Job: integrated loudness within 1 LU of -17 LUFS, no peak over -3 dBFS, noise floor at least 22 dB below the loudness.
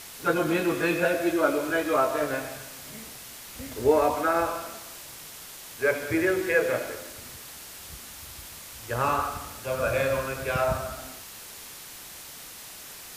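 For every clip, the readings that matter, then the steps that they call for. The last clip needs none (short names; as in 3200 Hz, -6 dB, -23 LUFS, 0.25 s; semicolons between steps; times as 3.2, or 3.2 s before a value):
noise floor -44 dBFS; noise floor target -49 dBFS; loudness -26.5 LUFS; peak -8.0 dBFS; loudness target -17.0 LUFS
-> denoiser 6 dB, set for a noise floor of -44 dBFS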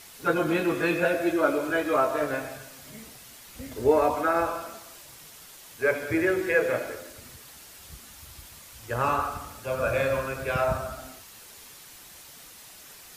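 noise floor -48 dBFS; noise floor target -49 dBFS
-> denoiser 6 dB, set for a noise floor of -48 dBFS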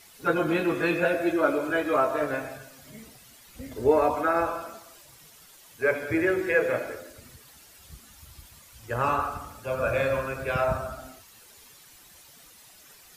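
noise floor -53 dBFS; loudness -26.5 LUFS; peak -8.5 dBFS; loudness target -17.0 LUFS
-> gain +9.5 dB; limiter -3 dBFS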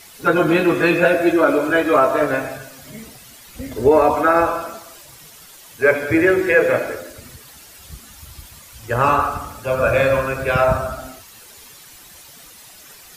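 loudness -17.0 LUFS; peak -3.0 dBFS; noise floor -43 dBFS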